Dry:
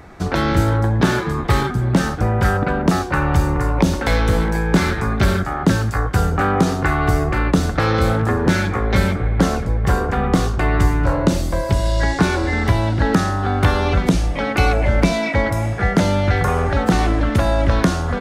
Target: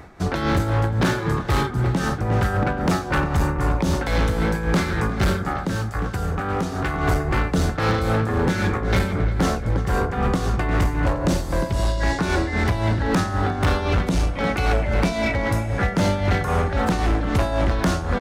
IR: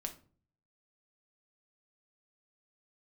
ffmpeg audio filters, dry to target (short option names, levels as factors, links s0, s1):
-filter_complex "[0:a]asplit=2[s0][s1];[s1]adelay=354,lowpass=f=3600:p=1,volume=0.266,asplit=2[s2][s3];[s3]adelay=354,lowpass=f=3600:p=1,volume=0.52,asplit=2[s4][s5];[s5]adelay=354,lowpass=f=3600:p=1,volume=0.52,asplit=2[s6][s7];[s7]adelay=354,lowpass=f=3600:p=1,volume=0.52,asplit=2[s8][s9];[s9]adelay=354,lowpass=f=3600:p=1,volume=0.52,asplit=2[s10][s11];[s11]adelay=354,lowpass=f=3600:p=1,volume=0.52[s12];[s2][s4][s6][s8][s10][s12]amix=inputs=6:normalize=0[s13];[s0][s13]amix=inputs=2:normalize=0,tremolo=f=3.8:d=0.59,volume=5.62,asoftclip=hard,volume=0.178,asettb=1/sr,asplit=3[s14][s15][s16];[s14]atrim=end=5.504[s17];[s15]atrim=start=5.5:end=6.94,asetpts=PTS-STARTPTS,afade=t=in:d=0.004:c=qsin,afade=t=out:st=1.436:d=0.004:c=qsin,acompressor=threshold=0.0891:ratio=6[s18];[s16]atrim=start=6.936[s19];[s17][s18]acrossfade=d=0.004:c1=hsin:c2=qsin[s20];[s20][s19]acrossfade=d=0.004:c1=qsin:c2=hsin"